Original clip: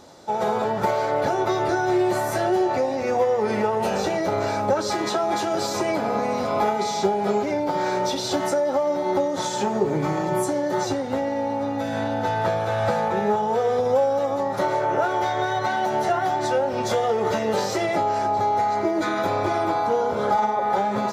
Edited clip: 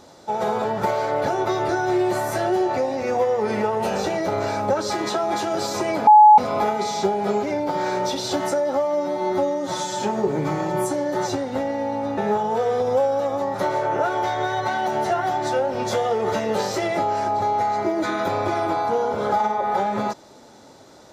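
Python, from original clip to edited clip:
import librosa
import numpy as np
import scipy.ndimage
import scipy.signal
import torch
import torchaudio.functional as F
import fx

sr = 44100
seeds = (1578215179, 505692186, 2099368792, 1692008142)

y = fx.edit(x, sr, fx.bleep(start_s=6.07, length_s=0.31, hz=849.0, db=-6.0),
    fx.stretch_span(start_s=8.75, length_s=0.85, factor=1.5),
    fx.cut(start_s=11.75, length_s=1.41), tone=tone)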